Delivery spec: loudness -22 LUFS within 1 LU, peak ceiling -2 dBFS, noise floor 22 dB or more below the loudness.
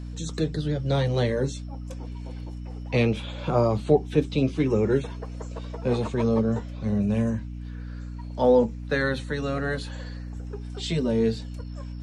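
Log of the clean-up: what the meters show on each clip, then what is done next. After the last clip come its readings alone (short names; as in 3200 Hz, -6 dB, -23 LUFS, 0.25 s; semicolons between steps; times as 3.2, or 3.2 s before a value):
hum 60 Hz; harmonics up to 300 Hz; hum level -33 dBFS; loudness -25.5 LUFS; peak -7.0 dBFS; loudness target -22.0 LUFS
-> de-hum 60 Hz, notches 5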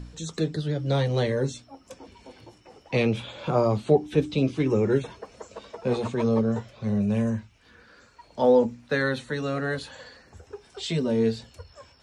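hum none; loudness -25.5 LUFS; peak -7.0 dBFS; loudness target -22.0 LUFS
-> gain +3.5 dB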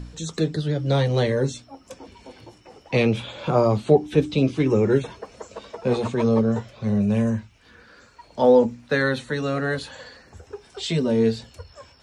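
loudness -22.0 LUFS; peak -3.5 dBFS; noise floor -54 dBFS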